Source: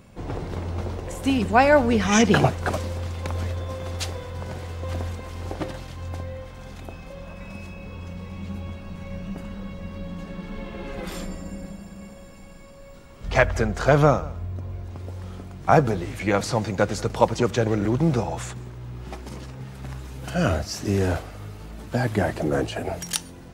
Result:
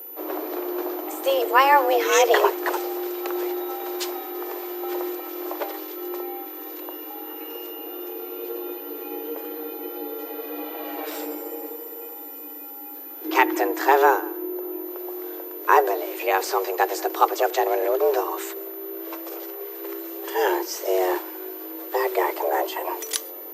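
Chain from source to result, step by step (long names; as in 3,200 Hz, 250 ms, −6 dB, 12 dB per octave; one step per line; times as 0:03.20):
frequency shifter +270 Hz
steady tone 14,000 Hz −36 dBFS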